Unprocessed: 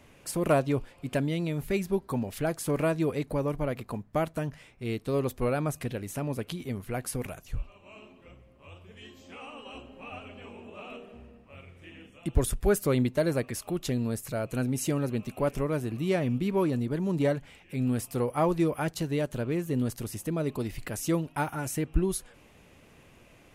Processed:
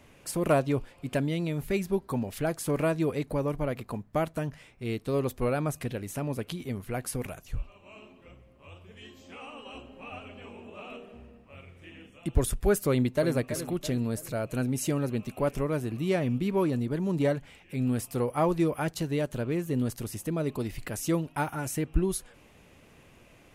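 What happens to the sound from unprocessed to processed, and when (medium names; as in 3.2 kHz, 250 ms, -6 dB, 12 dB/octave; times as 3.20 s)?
12.89–13.34 s: echo throw 330 ms, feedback 45%, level -10.5 dB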